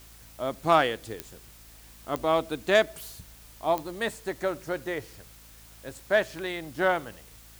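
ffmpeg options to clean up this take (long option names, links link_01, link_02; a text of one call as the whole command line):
ffmpeg -i in.wav -af "adeclick=threshold=4,bandreject=frequency=55.2:width_type=h:width=4,bandreject=frequency=110.4:width_type=h:width=4,bandreject=frequency=165.6:width_type=h:width=4,bandreject=frequency=220.8:width_type=h:width=4,bandreject=frequency=276:width_type=h:width=4,afwtdn=0.0022" out.wav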